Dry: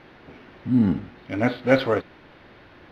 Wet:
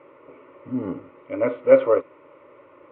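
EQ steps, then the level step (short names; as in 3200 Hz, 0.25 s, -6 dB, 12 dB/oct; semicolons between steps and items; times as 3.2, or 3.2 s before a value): speaker cabinet 190–2100 Hz, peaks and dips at 260 Hz +7 dB, 570 Hz +10 dB, 1100 Hz +4 dB; fixed phaser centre 1100 Hz, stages 8; 0.0 dB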